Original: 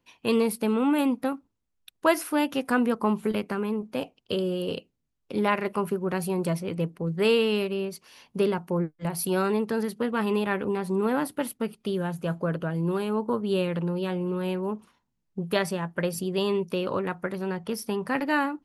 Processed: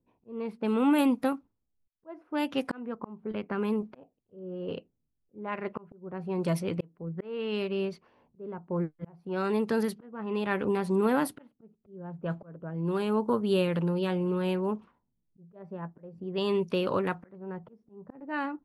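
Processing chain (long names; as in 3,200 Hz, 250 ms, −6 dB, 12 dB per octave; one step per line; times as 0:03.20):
volume swells 650 ms
low-pass that shuts in the quiet parts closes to 420 Hz, open at −24 dBFS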